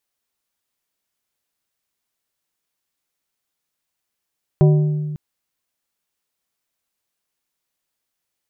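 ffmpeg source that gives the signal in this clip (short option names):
-f lavfi -i "aevalsrc='0.398*pow(10,-3*t/1.88)*sin(2*PI*151*t)+0.178*pow(10,-3*t/0.99)*sin(2*PI*377.5*t)+0.0794*pow(10,-3*t/0.712)*sin(2*PI*604*t)+0.0355*pow(10,-3*t/0.609)*sin(2*PI*755*t)+0.0158*pow(10,-3*t/0.507)*sin(2*PI*981.5*t)':d=0.55:s=44100"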